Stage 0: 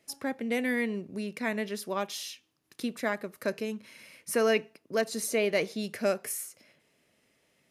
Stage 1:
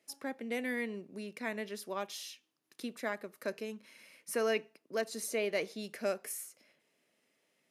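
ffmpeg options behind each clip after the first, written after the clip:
-af "highpass=210,volume=0.501"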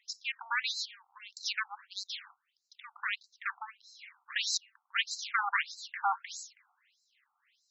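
-af "aeval=exprs='0.1*(cos(1*acos(clip(val(0)/0.1,-1,1)))-cos(1*PI/2))+0.0447*(cos(4*acos(clip(val(0)/0.1,-1,1)))-cos(4*PI/2))+0.0501*(cos(6*acos(clip(val(0)/0.1,-1,1)))-cos(6*PI/2))+0.0316*(cos(7*acos(clip(val(0)/0.1,-1,1)))-cos(7*PI/2))':c=same,afftfilt=real='re*between(b*sr/1024,980*pow(5600/980,0.5+0.5*sin(2*PI*1.6*pts/sr))/1.41,980*pow(5600/980,0.5+0.5*sin(2*PI*1.6*pts/sr))*1.41)':imag='im*between(b*sr/1024,980*pow(5600/980,0.5+0.5*sin(2*PI*1.6*pts/sr))/1.41,980*pow(5600/980,0.5+0.5*sin(2*PI*1.6*pts/sr))*1.41)':win_size=1024:overlap=0.75,volume=2.66"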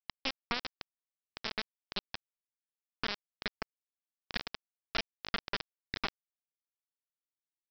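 -af "acompressor=threshold=0.0112:ratio=12,aresample=11025,acrusher=bits=3:dc=4:mix=0:aa=0.000001,aresample=44100,volume=2.99"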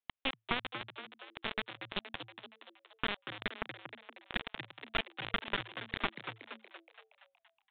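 -filter_complex "[0:a]asplit=2[s0][s1];[s1]asplit=7[s2][s3][s4][s5][s6][s7][s8];[s2]adelay=235,afreqshift=110,volume=0.355[s9];[s3]adelay=470,afreqshift=220,volume=0.202[s10];[s4]adelay=705,afreqshift=330,volume=0.115[s11];[s5]adelay=940,afreqshift=440,volume=0.0661[s12];[s6]adelay=1175,afreqshift=550,volume=0.0376[s13];[s7]adelay=1410,afreqshift=660,volume=0.0214[s14];[s8]adelay=1645,afreqshift=770,volume=0.0122[s15];[s9][s10][s11][s12][s13][s14][s15]amix=inputs=7:normalize=0[s16];[s0][s16]amix=inputs=2:normalize=0,aresample=8000,aresample=44100,volume=1.19"

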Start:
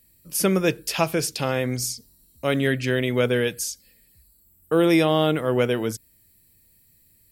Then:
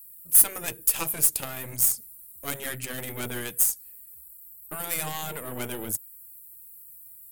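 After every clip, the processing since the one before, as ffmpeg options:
-af "afftfilt=real='re*lt(hypot(re,im),0.501)':imag='im*lt(hypot(re,im),0.501)':win_size=1024:overlap=0.75,aeval=exprs='0.316*(cos(1*acos(clip(val(0)/0.316,-1,1)))-cos(1*PI/2))+0.0447*(cos(3*acos(clip(val(0)/0.316,-1,1)))-cos(3*PI/2))+0.0631*(cos(4*acos(clip(val(0)/0.316,-1,1)))-cos(4*PI/2))':c=same,aexciter=amount=6.2:drive=8.2:freq=7600,volume=0.596"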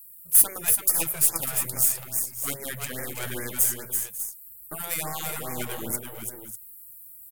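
-filter_complex "[0:a]asplit=2[s0][s1];[s1]aecho=0:1:336|545|596:0.531|0.141|0.282[s2];[s0][s2]amix=inputs=2:normalize=0,afftfilt=real='re*(1-between(b*sr/1024,240*pow(3500/240,0.5+0.5*sin(2*PI*2.4*pts/sr))/1.41,240*pow(3500/240,0.5+0.5*sin(2*PI*2.4*pts/sr))*1.41))':imag='im*(1-between(b*sr/1024,240*pow(3500/240,0.5+0.5*sin(2*PI*2.4*pts/sr))/1.41,240*pow(3500/240,0.5+0.5*sin(2*PI*2.4*pts/sr))*1.41))':win_size=1024:overlap=0.75"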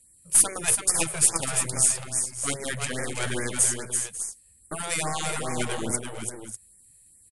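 -af "aresample=22050,aresample=44100,volume=1.68"

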